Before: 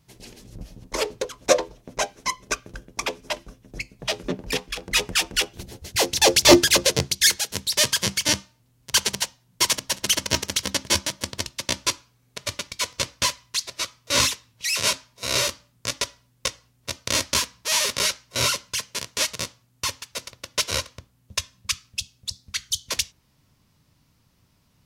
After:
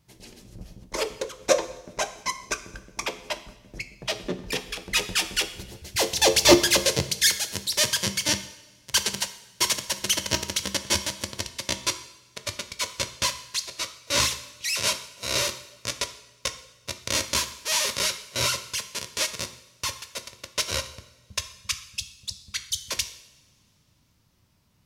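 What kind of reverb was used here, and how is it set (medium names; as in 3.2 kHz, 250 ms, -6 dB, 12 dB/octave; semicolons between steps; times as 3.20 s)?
two-slope reverb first 0.81 s, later 3 s, from -21 dB, DRR 9 dB; trim -3 dB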